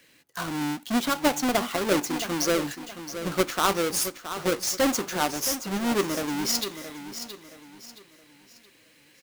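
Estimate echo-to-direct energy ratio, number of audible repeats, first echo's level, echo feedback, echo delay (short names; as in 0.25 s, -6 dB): -10.5 dB, 3, -11.0 dB, 35%, 0.671 s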